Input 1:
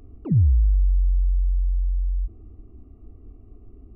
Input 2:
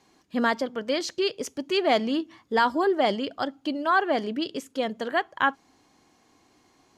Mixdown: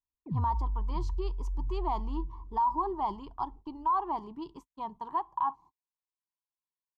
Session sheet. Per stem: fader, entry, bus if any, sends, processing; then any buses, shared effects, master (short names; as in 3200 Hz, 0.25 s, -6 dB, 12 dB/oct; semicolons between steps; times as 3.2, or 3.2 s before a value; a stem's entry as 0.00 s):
-13.0 dB, 0.00 s, no send, echo send -14 dB, dry
-2.0 dB, 0.00 s, no send, no echo send, EQ curve 160 Hz 0 dB, 240 Hz -16 dB, 350 Hz -6 dB, 560 Hz -28 dB, 980 Hz +14 dB, 1500 Hz -25 dB, 3600 Hz -20 dB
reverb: off
echo: feedback echo 0.644 s, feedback 45%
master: gate -47 dBFS, range -45 dB; limiter -21 dBFS, peak gain reduction 13.5 dB